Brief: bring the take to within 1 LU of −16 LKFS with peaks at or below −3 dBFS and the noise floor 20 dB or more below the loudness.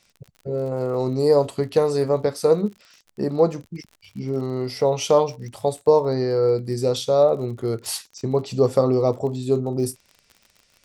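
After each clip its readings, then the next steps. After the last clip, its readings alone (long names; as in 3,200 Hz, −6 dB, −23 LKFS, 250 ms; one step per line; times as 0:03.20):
crackle rate 45 per second; integrated loudness −22.0 LKFS; sample peak −4.5 dBFS; target loudness −16.0 LKFS
→ click removal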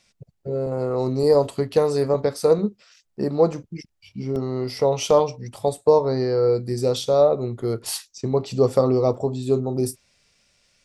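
crackle rate 0.55 per second; integrated loudness −22.0 LKFS; sample peak −4.5 dBFS; target loudness −16.0 LKFS
→ level +6 dB
brickwall limiter −3 dBFS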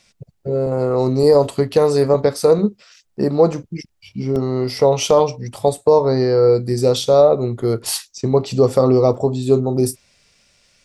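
integrated loudness −16.5 LKFS; sample peak −3.0 dBFS; background noise floor −65 dBFS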